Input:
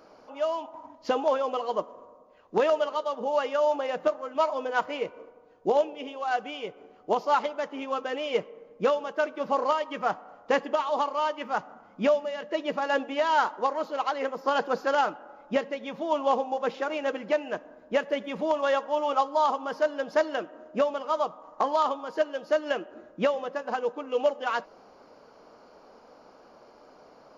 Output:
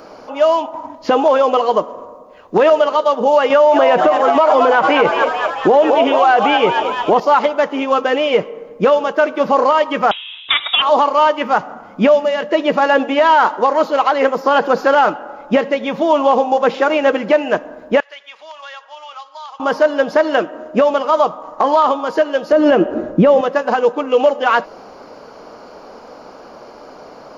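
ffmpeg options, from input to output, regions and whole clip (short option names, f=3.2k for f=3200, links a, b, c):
-filter_complex "[0:a]asettb=1/sr,asplit=3[a][b][c];[a]atrim=end=3.504[d];[b]atrim=start=3.5:end=7.2,asetpts=PTS-STARTPTS,afade=t=in:d=0.004:c=qsin,afade=t=out:st=3.696:d=0.004:c=qsin,asplit=9[e][f][g][h][i][j][k][l][m];[f]adelay=219,afreqshift=78,volume=-11dB[n];[g]adelay=438,afreqshift=156,volume=-14.9dB[o];[h]adelay=657,afreqshift=234,volume=-18.8dB[p];[i]adelay=876,afreqshift=312,volume=-22.6dB[q];[j]adelay=1095,afreqshift=390,volume=-26.5dB[r];[k]adelay=1314,afreqshift=468,volume=-30.4dB[s];[l]adelay=1533,afreqshift=546,volume=-34.3dB[t];[m]adelay=1752,afreqshift=624,volume=-38.1dB[u];[e][n][o][p][q][r][s][t][u]amix=inputs=9:normalize=0,atrim=end_sample=163170,acontrast=80[v];[c]atrim=start=7.196[w];[d][v]acrossfade=d=0.004:c1=hsin:c2=qsin[x];[x][w]acrossfade=d=0.004:c1=qsin:c2=hsin,asettb=1/sr,asplit=3[y][z][aa];[y]atrim=end=10.114[ab];[z]atrim=start=10.11:end=10.82,asetpts=PTS-STARTPTS,afade=t=in:d=0.004:c=qsin,afade=t=out:st=0.706:d=0.004:c=qsin,highshelf=f=2.1k:g=10.5,lowpass=f=3.4k:t=q:w=0.5098,lowpass=f=3.4k:t=q:w=0.6013,lowpass=f=3.4k:t=q:w=0.9,lowpass=f=3.4k:t=q:w=2.563,afreqshift=-4000[ac];[aa]atrim=start=10.816[ad];[ab][ac]acrossfade=d=0.004:c1=hsin:c2=qsin[ae];[ae][ad]acrossfade=d=0.004:c1=qsin:c2=hsin,asettb=1/sr,asplit=3[af][ag][ah];[af]atrim=end=18.004[ai];[ag]atrim=start=18:end=19.6,asetpts=PTS-STARTPTS,afade=t=in:d=0.004:c=qsin,afade=t=out:st=1.596:d=0.004:c=qsin,highpass=730,lowpass=3.5k,aderivative,acompressor=threshold=-47dB:ratio=2.5:attack=3.2:release=140:knee=1:detection=peak[aj];[ah]atrim=start=19.596[ak];[ai][aj]acrossfade=d=0.004:c1=hsin:c2=qsin[al];[al][ak]acrossfade=d=0.004:c1=qsin:c2=hsin,asettb=1/sr,asplit=3[am][an][ao];[am]atrim=end=22.524[ap];[an]atrim=start=22.52:end=23.41,asetpts=PTS-STARTPTS,afade=t=in:d=0.004:c=qsin,afade=t=out:st=0.886:d=0.004:c=qsin,acontrast=81,tiltshelf=f=690:g=6.5[aq];[ao]atrim=start=23.406[ar];[ap][aq]acrossfade=d=0.004:c1=hsin:c2=qsin[as];[as][ar]acrossfade=d=0.004:c1=qsin:c2=hsin,acrossover=split=3300[at][au];[au]acompressor=threshold=-51dB:ratio=4:attack=1:release=60[av];[at][av]amix=inputs=2:normalize=0,alimiter=level_in=18.5dB:limit=-1dB:release=50:level=0:latency=1,volume=-2.5dB"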